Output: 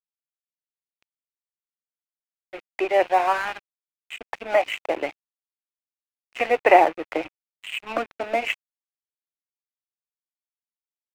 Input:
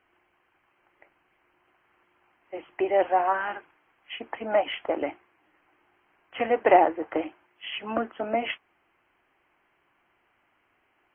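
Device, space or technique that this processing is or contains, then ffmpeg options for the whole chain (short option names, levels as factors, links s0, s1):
pocket radio on a weak battery: -af "highpass=320,lowpass=3000,aeval=exprs='sgn(val(0))*max(abs(val(0))-0.0106,0)':c=same,equalizer=f=2500:t=o:w=0.52:g=10,volume=1.58"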